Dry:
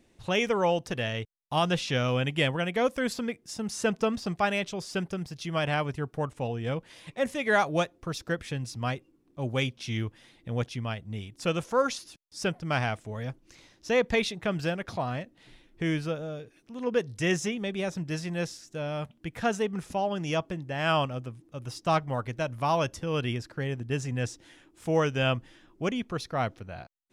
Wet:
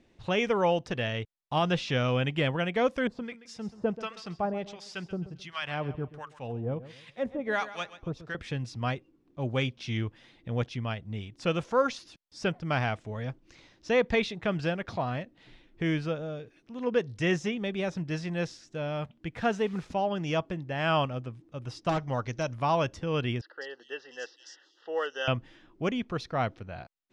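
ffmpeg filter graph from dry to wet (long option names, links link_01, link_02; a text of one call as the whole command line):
ffmpeg -i in.wav -filter_complex "[0:a]asettb=1/sr,asplit=3[link_01][link_02][link_03];[link_01]atrim=end=3.074[link_04];[link_02]atrim=start=3.07:end=8.35,asetpts=PTS-STARTPTS,afade=type=in:duration=0.004:curve=qsin,afade=type=out:start_time=5.276:duration=0.004:curve=qsin,acrossover=split=1000[link_05][link_06];[link_05]aeval=exprs='val(0)*(1-1/2+1/2*cos(2*PI*1.4*n/s))':channel_layout=same[link_07];[link_06]aeval=exprs='val(0)*(1-1/2-1/2*cos(2*PI*1.4*n/s))':channel_layout=same[link_08];[link_07][link_08]amix=inputs=2:normalize=0,aecho=1:1:132|264|396:0.178|0.0569|0.0182,atrim=end_sample=232848[link_09];[link_03]atrim=start=8.346[link_10];[link_04][link_09]acrossfade=duration=0.004:curve1=hsin:curve2=qsin[link_11];[link_11][link_10]acrossfade=duration=0.004:curve1=qsin:curve2=hsin,asettb=1/sr,asplit=3[link_12][link_13][link_14];[link_12]atrim=end=19.384[link_15];[link_13]atrim=start=19.38:end=19.93,asetpts=PTS-STARTPTS,afade=type=in:duration=0.004:curve=qsin,afade=type=out:start_time=0.546:duration=0.004:curve=qsin,highshelf=frequency=9500:gain=-5.5,acrusher=bits=9:dc=4:mix=0:aa=0.000001[link_16];[link_14]atrim=start=19.926[link_17];[link_15][link_16]acrossfade=duration=0.004:curve1=hsin:curve2=qsin[link_18];[link_18][link_17]acrossfade=duration=0.004:curve1=qsin:curve2=hsin,asettb=1/sr,asplit=3[link_19][link_20][link_21];[link_19]atrim=end=21.894[link_22];[link_20]atrim=start=21.89:end=22.54,asetpts=PTS-STARTPTS,afade=type=in:duration=0.004:curve=qsin,afade=type=out:start_time=0.646:duration=0.004:curve=qsin,lowpass=frequency=6000:width_type=q:width=5.9,aeval=exprs='0.106*(abs(mod(val(0)/0.106+3,4)-2)-1)':channel_layout=same[link_23];[link_21]atrim=start=22.536[link_24];[link_22][link_23]acrossfade=duration=0.004:curve1=hsin:curve2=qsin[link_25];[link_25][link_24]acrossfade=duration=0.004:curve1=qsin:curve2=hsin,asettb=1/sr,asplit=3[link_26][link_27][link_28];[link_26]atrim=end=23.414[link_29];[link_27]atrim=start=23.41:end=25.28,asetpts=PTS-STARTPTS,afade=type=in:duration=0.004:curve=qsin,afade=type=out:start_time=1.866:duration=0.004:curve=qsin,asuperstop=centerf=2300:order=20:qfactor=3.5,highpass=frequency=480:width=0.5412,highpass=frequency=480:width=1.3066,equalizer=frequency=660:width_type=q:width=4:gain=-10,equalizer=frequency=1000:width_type=q:width=4:gain=-8,equalizer=frequency=4900:width_type=q:width=4:gain=6,lowpass=frequency=6300:width=0.5412,lowpass=frequency=6300:width=1.3066,acrossover=split=4000[link_30][link_31];[link_31]adelay=200[link_32];[link_30][link_32]amix=inputs=2:normalize=0,atrim=end_sample=82467[link_33];[link_28]atrim=start=25.276[link_34];[link_29][link_33]acrossfade=duration=0.004:curve1=hsin:curve2=qsin[link_35];[link_35][link_34]acrossfade=duration=0.004:curve1=qsin:curve2=hsin,deesser=0.8,lowpass=4900" out.wav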